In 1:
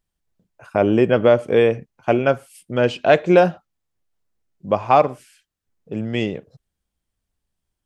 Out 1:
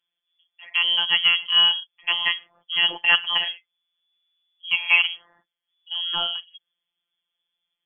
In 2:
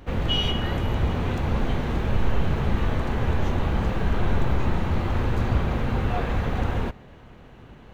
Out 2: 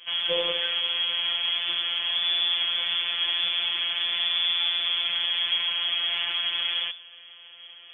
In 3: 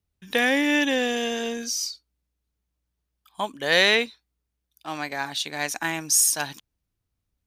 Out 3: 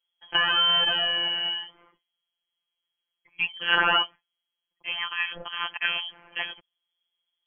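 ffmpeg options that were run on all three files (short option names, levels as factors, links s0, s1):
-filter_complex "[0:a]lowpass=f=2900:t=q:w=0.5098,lowpass=f=2900:t=q:w=0.6013,lowpass=f=2900:t=q:w=0.9,lowpass=f=2900:t=q:w=2.563,afreqshift=-3400,acrossover=split=2600[s0][s1];[s1]acompressor=threshold=0.0562:ratio=4:attack=1:release=60[s2];[s0][s2]amix=inputs=2:normalize=0,afftfilt=real='hypot(re,im)*cos(PI*b)':imag='0':win_size=1024:overlap=0.75,volume=1.5"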